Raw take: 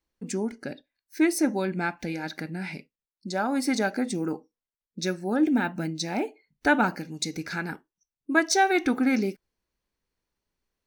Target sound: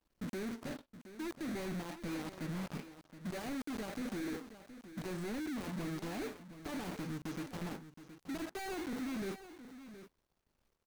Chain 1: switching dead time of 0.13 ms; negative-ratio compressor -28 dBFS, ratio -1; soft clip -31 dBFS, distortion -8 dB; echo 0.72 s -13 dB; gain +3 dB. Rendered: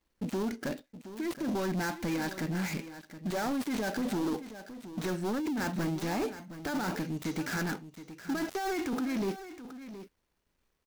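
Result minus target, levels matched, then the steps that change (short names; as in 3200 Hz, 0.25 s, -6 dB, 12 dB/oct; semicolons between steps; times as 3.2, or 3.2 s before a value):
switching dead time: distortion -8 dB; soft clip: distortion -4 dB
change: switching dead time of 0.45 ms; change: soft clip -39.5 dBFS, distortion -4 dB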